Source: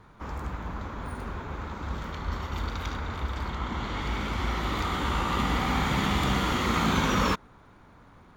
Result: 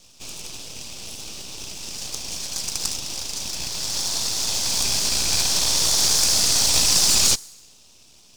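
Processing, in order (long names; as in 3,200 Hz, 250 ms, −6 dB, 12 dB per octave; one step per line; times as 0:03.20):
Chebyshev band-pass filter 1,200–8,400 Hz, order 4
on a send: delay with a high-pass on its return 65 ms, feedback 64%, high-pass 3,200 Hz, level −20 dB
on the sum: full-wave rectification
high shelf with overshoot 3,800 Hz +13.5 dB, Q 1.5
level +8 dB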